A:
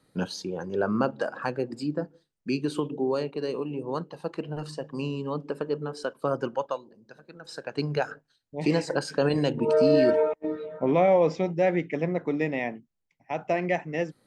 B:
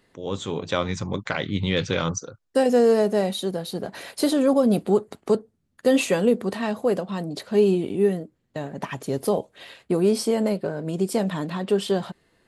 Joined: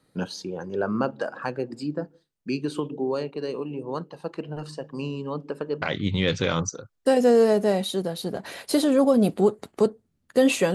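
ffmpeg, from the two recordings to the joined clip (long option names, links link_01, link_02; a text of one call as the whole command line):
ffmpeg -i cue0.wav -i cue1.wav -filter_complex "[0:a]apad=whole_dur=10.74,atrim=end=10.74,atrim=end=5.822[link_01];[1:a]atrim=start=1.308:end=6.23[link_02];[link_01][link_02]acrossfade=duration=0.004:curve1=hsin:curve2=hsin" out.wav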